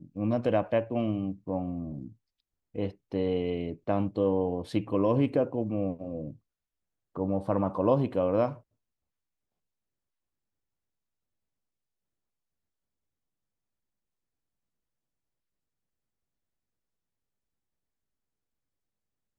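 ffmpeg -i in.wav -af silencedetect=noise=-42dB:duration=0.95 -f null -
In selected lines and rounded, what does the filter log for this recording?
silence_start: 8.57
silence_end: 19.38 | silence_duration: 10.81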